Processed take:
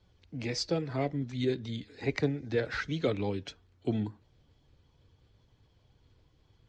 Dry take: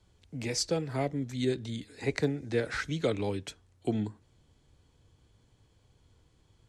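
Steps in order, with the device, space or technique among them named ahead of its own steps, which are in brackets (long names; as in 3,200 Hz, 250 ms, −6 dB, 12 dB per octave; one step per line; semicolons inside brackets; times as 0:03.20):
clip after many re-uploads (low-pass filter 5,600 Hz 24 dB per octave; spectral magnitudes quantised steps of 15 dB)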